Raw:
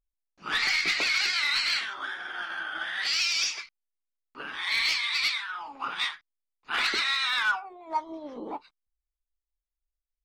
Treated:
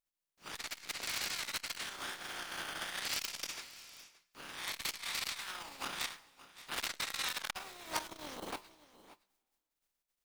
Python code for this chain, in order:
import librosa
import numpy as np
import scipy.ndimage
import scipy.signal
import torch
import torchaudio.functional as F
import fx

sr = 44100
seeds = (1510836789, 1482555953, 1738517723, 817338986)

y = fx.spec_flatten(x, sr, power=0.36)
y = fx.rider(y, sr, range_db=5, speed_s=2.0)
y = y + 10.0 ** (-20.0 / 20.0) * np.pad(y, (int(571 * sr / 1000.0), 0))[:len(y)]
y = fx.rev_double_slope(y, sr, seeds[0], early_s=0.22, late_s=1.8, knee_db=-18, drr_db=15.5)
y = fx.transformer_sat(y, sr, knee_hz=3700.0)
y = y * 10.0 ** (-7.5 / 20.0)